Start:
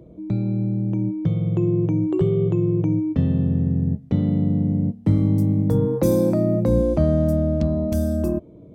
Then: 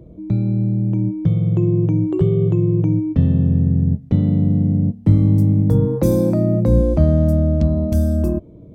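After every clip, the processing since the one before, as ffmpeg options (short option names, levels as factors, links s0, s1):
-af "lowshelf=f=140:g=9.5"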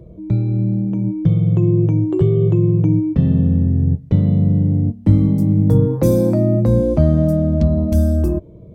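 -af "flanger=delay=1.8:depth=6.7:regen=-51:speed=0.23:shape=sinusoidal,volume=1.88"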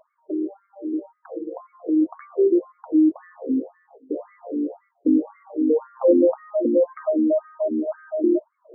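-af "afftfilt=real='re*between(b*sr/1024,320*pow(1600/320,0.5+0.5*sin(2*PI*1.9*pts/sr))/1.41,320*pow(1600/320,0.5+0.5*sin(2*PI*1.9*pts/sr))*1.41)':imag='im*between(b*sr/1024,320*pow(1600/320,0.5+0.5*sin(2*PI*1.9*pts/sr))/1.41,320*pow(1600/320,0.5+0.5*sin(2*PI*1.9*pts/sr))*1.41)':win_size=1024:overlap=0.75,volume=1.68"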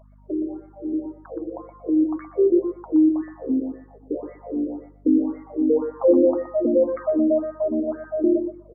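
-filter_complex "[0:a]asplit=2[s0][s1];[s1]adelay=121,lowpass=f=940:p=1,volume=0.398,asplit=2[s2][s3];[s3]adelay=121,lowpass=f=940:p=1,volume=0.17,asplit=2[s4][s5];[s5]adelay=121,lowpass=f=940:p=1,volume=0.17[s6];[s0][s2][s4][s6]amix=inputs=4:normalize=0,aeval=exprs='val(0)+0.00316*(sin(2*PI*50*n/s)+sin(2*PI*2*50*n/s)/2+sin(2*PI*3*50*n/s)/3+sin(2*PI*4*50*n/s)/4+sin(2*PI*5*50*n/s)/5)':c=same"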